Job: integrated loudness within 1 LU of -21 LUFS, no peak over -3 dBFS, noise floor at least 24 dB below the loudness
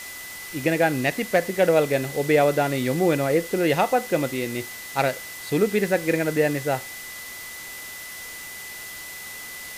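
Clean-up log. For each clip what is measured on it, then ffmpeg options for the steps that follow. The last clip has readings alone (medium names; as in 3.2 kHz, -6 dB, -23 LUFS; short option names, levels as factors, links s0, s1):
steady tone 2 kHz; tone level -38 dBFS; noise floor -38 dBFS; noise floor target -47 dBFS; loudness -23.0 LUFS; peak level -8.5 dBFS; loudness target -21.0 LUFS
-> -af "bandreject=f=2000:w=30"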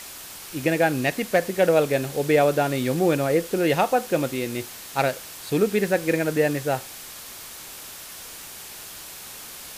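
steady tone not found; noise floor -40 dBFS; noise floor target -47 dBFS
-> -af "afftdn=nr=7:nf=-40"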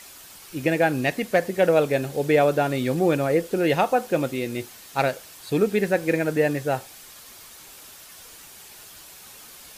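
noise floor -46 dBFS; noise floor target -47 dBFS
-> -af "afftdn=nr=6:nf=-46"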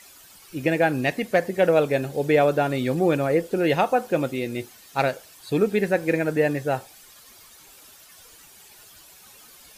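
noise floor -50 dBFS; loudness -23.0 LUFS; peak level -8.5 dBFS; loudness target -21.0 LUFS
-> -af "volume=1.26"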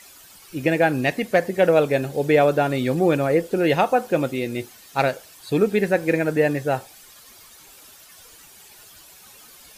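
loudness -21.0 LUFS; peak level -6.5 dBFS; noise floor -48 dBFS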